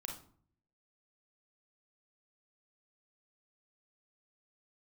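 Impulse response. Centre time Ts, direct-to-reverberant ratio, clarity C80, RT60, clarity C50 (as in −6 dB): 26 ms, 1.0 dB, 12.0 dB, 0.50 s, 5.5 dB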